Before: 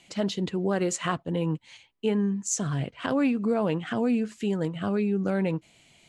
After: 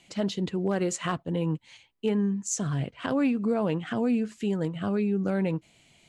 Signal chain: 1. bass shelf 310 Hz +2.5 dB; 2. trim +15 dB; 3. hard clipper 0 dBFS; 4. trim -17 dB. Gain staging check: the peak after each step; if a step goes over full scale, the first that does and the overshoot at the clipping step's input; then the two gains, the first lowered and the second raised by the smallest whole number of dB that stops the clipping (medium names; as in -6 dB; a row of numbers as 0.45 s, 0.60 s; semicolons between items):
-12.0 dBFS, +3.0 dBFS, 0.0 dBFS, -17.0 dBFS; step 2, 3.0 dB; step 2 +12 dB, step 4 -14 dB